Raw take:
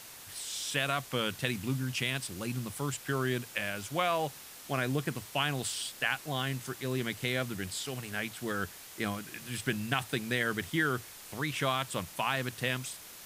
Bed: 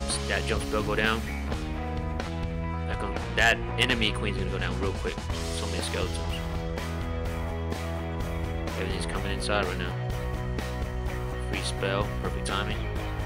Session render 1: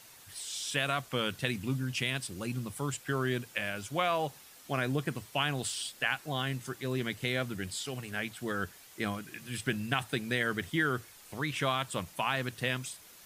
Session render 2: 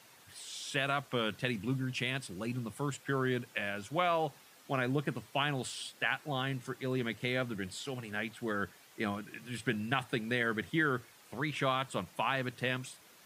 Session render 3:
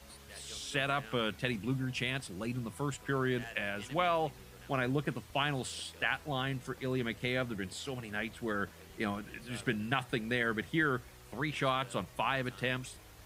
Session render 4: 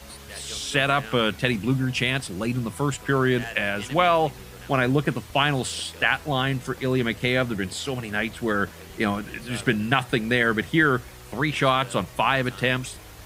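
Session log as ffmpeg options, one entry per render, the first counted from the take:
-af "afftdn=nr=7:nf=-49"
-af "highpass=120,highshelf=f=4100:g=-9"
-filter_complex "[1:a]volume=0.0562[s0];[0:a][s0]amix=inputs=2:normalize=0"
-af "volume=3.55"

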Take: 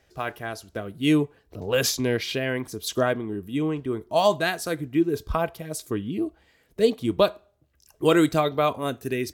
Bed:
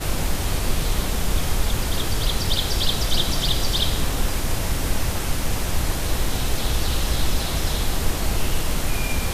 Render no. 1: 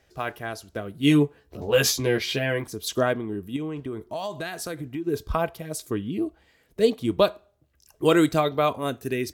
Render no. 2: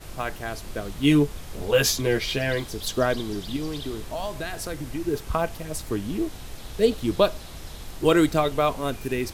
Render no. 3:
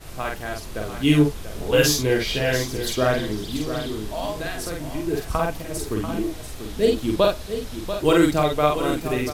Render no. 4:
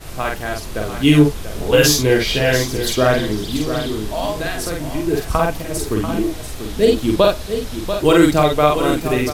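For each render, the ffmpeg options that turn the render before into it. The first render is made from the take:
-filter_complex "[0:a]asettb=1/sr,asplit=3[s0][s1][s2];[s0]atrim=end=1.004[s3];[s1]atrim=start=1:end=2.64,asetpts=PTS-STARTPTS,afade=t=in:d=0.004:c=qsin,afade=t=out:st=1.636:d=0.004:c=qsin,asplit=2[s4][s5];[s5]adelay=14,volume=0.708[s6];[s4][s6]amix=inputs=2:normalize=0,atrim=end_sample=72324[s7];[s2]atrim=start=2.636[s8];[s3][s7]acrossfade=d=0.004:c1=hsin:c2=qsin[s9];[s9][s8]acrossfade=d=0.004:c1=qsin:c2=hsin,asettb=1/sr,asplit=3[s10][s11][s12];[s10]atrim=end=3.564[s13];[s11]atrim=start=3.56:end=5.07,asetpts=PTS-STARTPTS,afade=t=in:d=0.004:c=qsin,afade=t=out:st=1.506:d=0.004:c=qsin,acompressor=threshold=0.0398:ratio=6:attack=3.2:release=140:knee=1:detection=peak[s14];[s12]atrim=start=5.066[s15];[s13][s14]acrossfade=d=0.004:c1=hsin:c2=qsin[s16];[s16][s15]acrossfade=d=0.004:c1=qsin:c2=hsin"
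-filter_complex "[1:a]volume=0.158[s0];[0:a][s0]amix=inputs=2:normalize=0"
-filter_complex "[0:a]asplit=2[s0][s1];[s1]adelay=47,volume=0.794[s2];[s0][s2]amix=inputs=2:normalize=0,aecho=1:1:689:0.316"
-af "volume=2,alimiter=limit=0.794:level=0:latency=1"

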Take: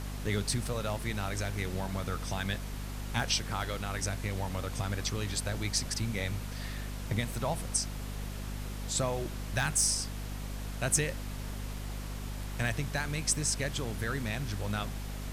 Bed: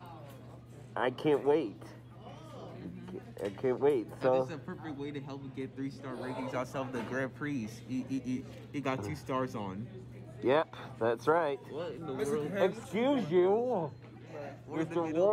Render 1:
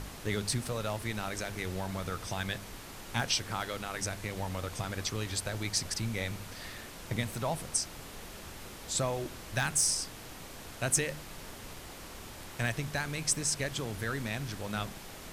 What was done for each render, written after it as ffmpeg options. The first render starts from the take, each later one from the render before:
-af "bandreject=f=50:t=h:w=4,bandreject=f=100:t=h:w=4,bandreject=f=150:t=h:w=4,bandreject=f=200:t=h:w=4,bandreject=f=250:t=h:w=4"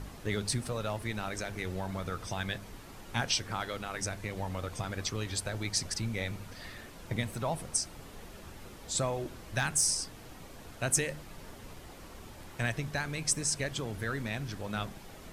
-af "afftdn=nr=7:nf=-47"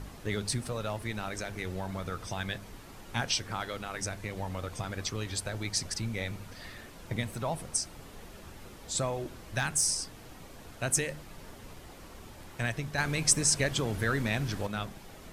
-filter_complex "[0:a]asettb=1/sr,asplit=3[s0][s1][s2];[s0]atrim=end=12.984[s3];[s1]atrim=start=12.98:end=14.67,asetpts=PTS-STARTPTS,afade=t=in:d=0.004:c=qsin,afade=t=out:st=1.686:d=0.004:c=qsin,acontrast=38[s4];[s2]atrim=start=14.666[s5];[s3][s4]acrossfade=d=0.004:c1=hsin:c2=qsin[s6];[s6][s5]acrossfade=d=0.004:c1=qsin:c2=hsin"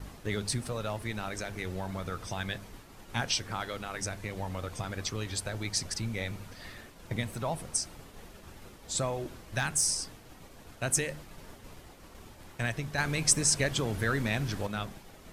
-af "agate=range=0.0224:threshold=0.00631:ratio=3:detection=peak"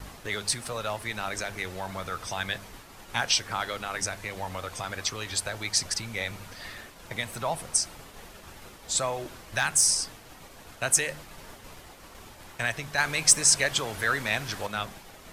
-filter_complex "[0:a]acrossover=split=560[s0][s1];[s0]alimiter=level_in=2.66:limit=0.0631:level=0:latency=1:release=220,volume=0.376[s2];[s1]acontrast=56[s3];[s2][s3]amix=inputs=2:normalize=0"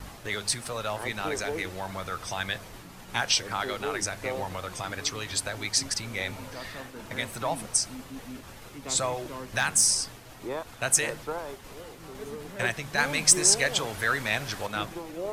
-filter_complex "[1:a]volume=0.473[s0];[0:a][s0]amix=inputs=2:normalize=0"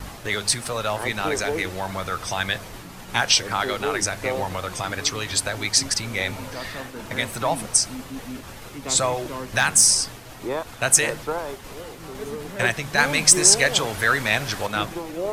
-af "volume=2.11,alimiter=limit=0.891:level=0:latency=1"

